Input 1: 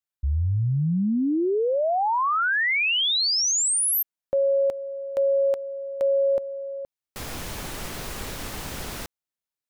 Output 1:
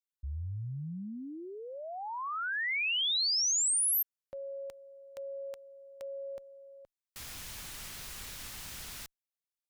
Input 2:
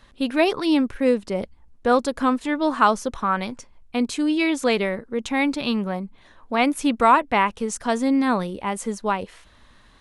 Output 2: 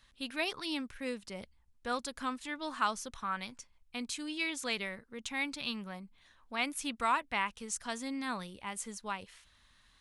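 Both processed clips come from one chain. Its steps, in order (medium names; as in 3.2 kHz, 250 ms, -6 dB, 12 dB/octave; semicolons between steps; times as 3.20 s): amplifier tone stack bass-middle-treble 5-5-5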